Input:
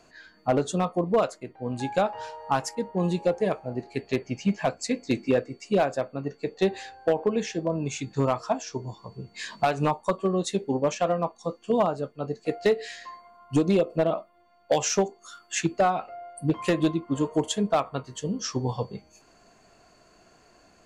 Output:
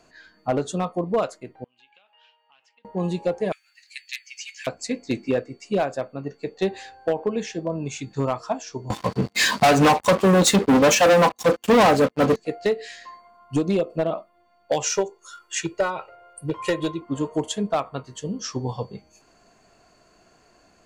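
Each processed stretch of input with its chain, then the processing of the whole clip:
1.64–2.85 compressor 12:1, threshold -31 dBFS + band-pass 2900 Hz, Q 6 + air absorption 110 m
3.52–4.67 steep high-pass 1800 Hz + tilt +3 dB/oct
8.9–12.36 comb 3.9 ms, depth 45% + sample leveller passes 5 + HPF 52 Hz
14.84–17.02 low shelf 500 Hz -4 dB + comb 2.1 ms, depth 80%
whole clip: dry

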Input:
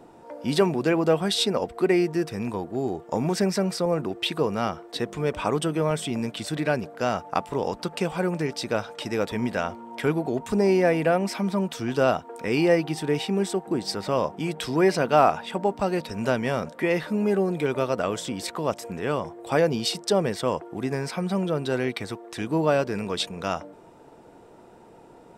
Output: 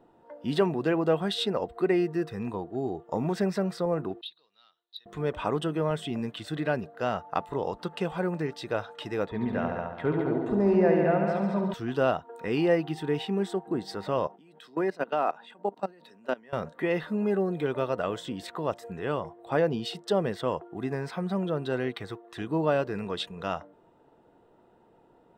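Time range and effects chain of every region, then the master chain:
4.21–5.06 band-pass 3900 Hz, Q 8.4 + core saturation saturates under 3800 Hz
9.26–11.74 LPF 1600 Hz 6 dB/oct + multi-head echo 70 ms, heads all three, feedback 45%, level -7.5 dB
14.27–16.53 level quantiser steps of 22 dB + HPF 180 Hz 24 dB/oct
19.45–20.08 high shelf 4000 Hz -3.5 dB + mismatched tape noise reduction decoder only
whole clip: notch 2300 Hz, Q 7; spectral noise reduction 7 dB; band shelf 7700 Hz -10.5 dB; gain -3.5 dB

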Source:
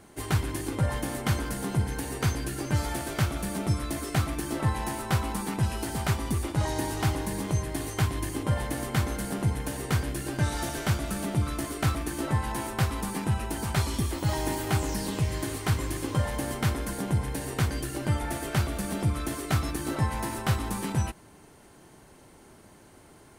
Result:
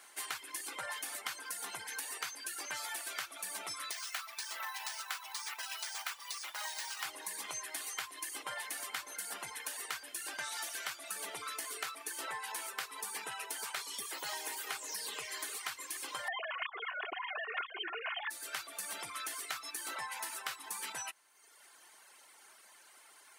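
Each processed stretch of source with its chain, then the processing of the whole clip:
3.91–7.05 HPF 820 Hz + careless resampling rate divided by 3×, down none, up hold
11.16–15.58 HPF 94 Hz + bell 440 Hz +12 dB 0.21 oct
16.28–18.3 sine-wave speech + comb 2.8 ms, depth 71%
whole clip: HPF 1300 Hz 12 dB/oct; reverb removal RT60 1.1 s; compressor 5:1, threshold -41 dBFS; gain +3.5 dB

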